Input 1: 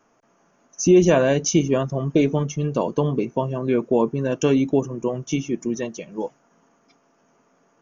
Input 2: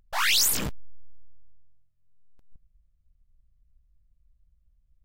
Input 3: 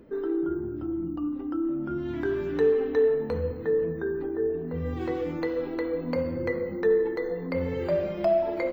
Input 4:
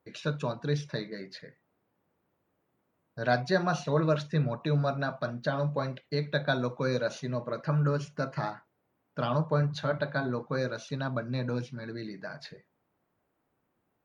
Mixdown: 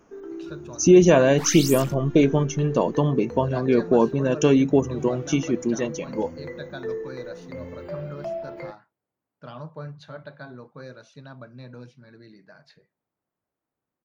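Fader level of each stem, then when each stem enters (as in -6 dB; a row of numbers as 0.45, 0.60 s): +1.0, -8.5, -8.5, -10.0 dB; 0.00, 1.25, 0.00, 0.25 s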